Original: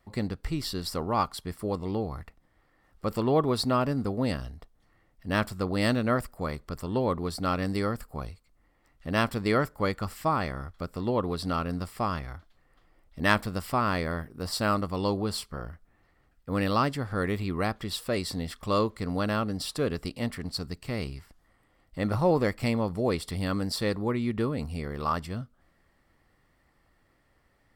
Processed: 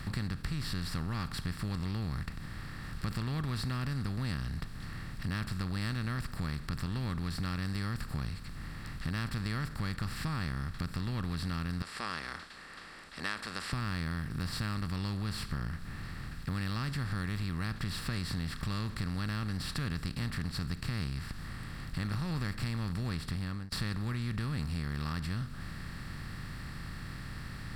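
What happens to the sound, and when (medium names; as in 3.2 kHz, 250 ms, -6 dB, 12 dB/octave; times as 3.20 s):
11.82–13.73 s: elliptic band-pass 460–8400 Hz, stop band 50 dB
22.95–23.72 s: studio fade out
whole clip: spectral levelling over time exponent 0.4; FFT filter 160 Hz 0 dB, 520 Hz -25 dB, 1.6 kHz -9 dB; compression 4:1, threshold -32 dBFS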